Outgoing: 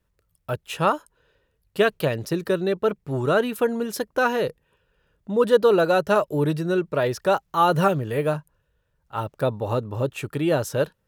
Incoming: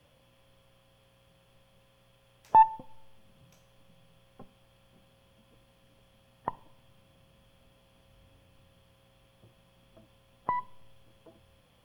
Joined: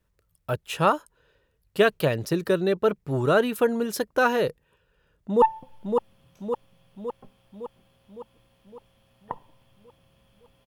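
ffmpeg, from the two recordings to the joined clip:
-filter_complex "[0:a]apad=whole_dur=10.66,atrim=end=10.66,atrim=end=5.422[a];[1:a]atrim=start=2.588:end=7.83[b];[a][b]acrossfade=d=0.004:c1=hsin:c2=hsin,asplit=2[c][d];[d]afade=t=in:st=5.12:d=0.01,afade=t=out:st=5.42:d=0.01,aecho=0:1:560|1120|1680|2240|2800|3360|3920|4480|5040:0.630957|0.378574|0.227145|0.136287|0.0817721|0.0490632|0.0294379|0.0176628|0.0105977[e];[c][e]amix=inputs=2:normalize=0"

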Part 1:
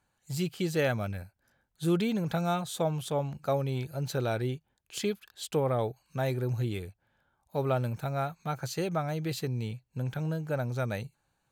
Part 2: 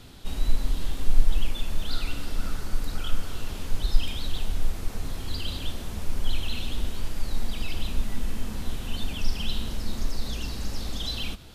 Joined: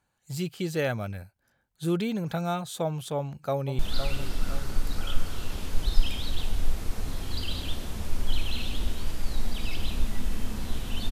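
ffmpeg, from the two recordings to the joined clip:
-filter_complex "[0:a]apad=whole_dur=11.11,atrim=end=11.11,atrim=end=3.792[a];[1:a]atrim=start=1.758:end=9.08[b];[a][b]acrossfade=d=0.004:c1=hsin:c2=hsin,asplit=2[c][d];[d]afade=t=in:st=3.16:d=0.01,afade=t=out:st=3.79:d=0.01,aecho=0:1:510|1020|1530|2040|2550:0.354813|0.159666|0.0718497|0.0323324|0.0145496[e];[c][e]amix=inputs=2:normalize=0"

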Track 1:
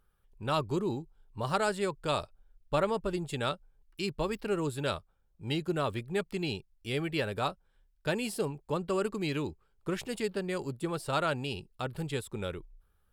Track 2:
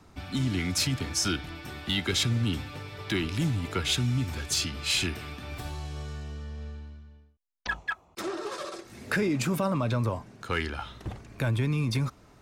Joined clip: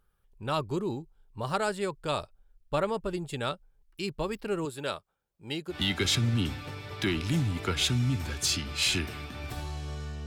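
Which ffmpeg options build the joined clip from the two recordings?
-filter_complex "[0:a]asettb=1/sr,asplit=3[a][b][c];[a]atrim=end=4.654[d];[b]atrim=start=4.65:end=5.76,asetpts=PTS-STARTPTS,afade=t=in:d=0.004:c=qsin,afade=t=out:st=1.106:d=0.004:c=qsin,highpass=f=280:p=1[e];[c]atrim=start=5.756[f];[d][e]acrossfade=d=0.004:c1=hsin:c2=qsin[g];[g][f]acrossfade=d=0.004:c1=qsin:c2=hsin,apad=whole_dur=10.26,atrim=end=10.26,atrim=end=5.76,asetpts=PTS-STARTPTS[h];[1:a]atrim=start=1.76:end=6.34,asetpts=PTS-STARTPTS[i];[h][i]acrossfade=d=0.08:c1=tri:c2=tri"

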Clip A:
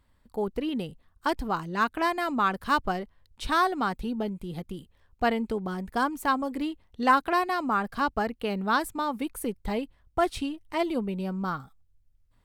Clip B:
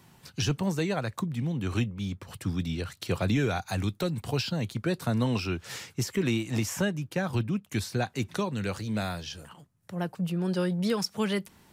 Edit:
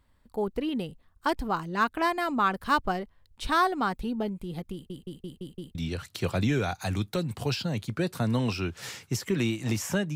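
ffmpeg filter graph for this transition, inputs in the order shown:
-filter_complex "[0:a]apad=whole_dur=10.15,atrim=end=10.15,asplit=6[a][b][c][d][e][f];[a]atrim=end=4.902[g];[b]atrim=start=4.728:end=4.902[h];[c]atrim=start=4.728:end=4.902[i];[d]atrim=start=4.728:end=4.902[j];[e]atrim=start=4.728:end=4.902[k];[f]atrim=start=4.728:end=4.902[l];[1:a]atrim=start=2.618:end=7.02[m];[g][h]acrossfade=d=0.004:c1=hsin:c2=hsin[n];[n][i]acrossfade=d=0.004:c1=hsin:c2=hsin[o];[o][j]acrossfade=d=0.004:c1=hsin:c2=hsin[p];[p][k]acrossfade=d=0.004:c1=hsin:c2=hsin[q];[q][l]acrossfade=d=0.004:c1=hsin:c2=hsin[r];[r][m]acrossfade=d=0.004:c1=hsin:c2=hsin"

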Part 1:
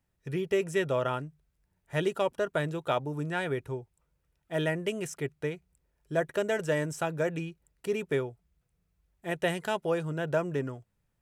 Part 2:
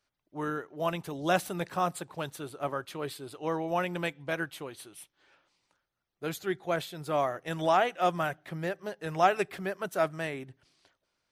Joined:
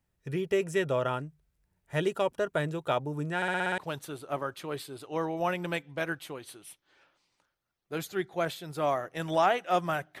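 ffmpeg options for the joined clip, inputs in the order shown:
-filter_complex "[0:a]apad=whole_dur=10.2,atrim=end=10.2,asplit=7[a][b][c][d][e][f][g];[a]atrim=end=3.422[h];[b]atrim=start=3.358:end=3.422[i];[c]atrim=start=3.358:end=3.422[j];[d]atrim=start=3.358:end=3.422[k];[e]atrim=start=3.358:end=3.422[l];[f]atrim=start=3.358:end=3.422[m];[g]atrim=start=3.358:end=3.422[n];[1:a]atrim=start=2.088:end=8.51[o];[h][i]acrossfade=d=0.004:c1=hsin:c2=hsin[p];[p][j]acrossfade=d=0.004:c1=hsin:c2=hsin[q];[q][k]acrossfade=d=0.004:c1=hsin:c2=hsin[r];[r][l]acrossfade=d=0.004:c1=hsin:c2=hsin[s];[s][m]acrossfade=d=0.004:c1=hsin:c2=hsin[t];[t][n]acrossfade=d=0.004:c1=hsin:c2=hsin[u];[u][o]acrossfade=d=0.004:c1=hsin:c2=hsin"

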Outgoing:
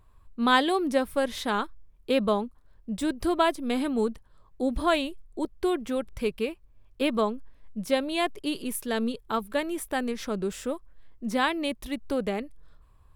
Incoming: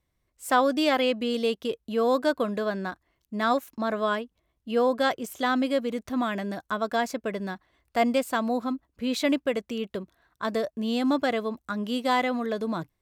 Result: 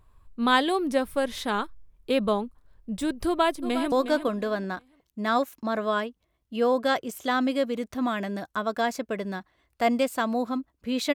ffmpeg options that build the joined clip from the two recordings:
-filter_complex "[0:a]apad=whole_dur=11.14,atrim=end=11.14,atrim=end=3.922[a];[1:a]atrim=start=2.068:end=9.29[b];[a][b]acrossfade=d=0.004:c1=hsin:c2=hsin,asplit=2[c][d];[d]afade=t=in:st=3.26:d=0.01,afade=t=out:st=3.92:d=0.01,aecho=0:1:360|720|1080:0.316228|0.0790569|0.0197642[e];[c][e]amix=inputs=2:normalize=0"

